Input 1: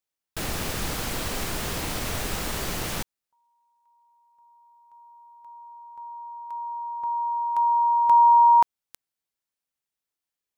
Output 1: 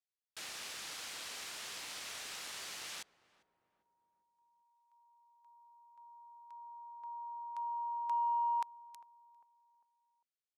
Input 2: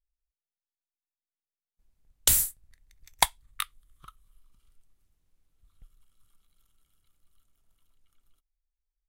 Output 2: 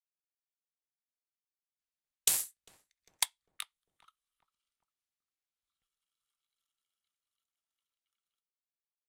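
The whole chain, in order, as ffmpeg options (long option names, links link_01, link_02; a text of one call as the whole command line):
ffmpeg -i in.wav -filter_complex "[0:a]aderivative,adynamicsmooth=sensitivity=1.5:basefreq=4300,asplit=2[link_01][link_02];[link_02]adelay=400,lowpass=frequency=1000:poles=1,volume=-18.5dB,asplit=2[link_03][link_04];[link_04]adelay=400,lowpass=frequency=1000:poles=1,volume=0.51,asplit=2[link_05][link_06];[link_06]adelay=400,lowpass=frequency=1000:poles=1,volume=0.51,asplit=2[link_07][link_08];[link_08]adelay=400,lowpass=frequency=1000:poles=1,volume=0.51[link_09];[link_01][link_03][link_05][link_07][link_09]amix=inputs=5:normalize=0" out.wav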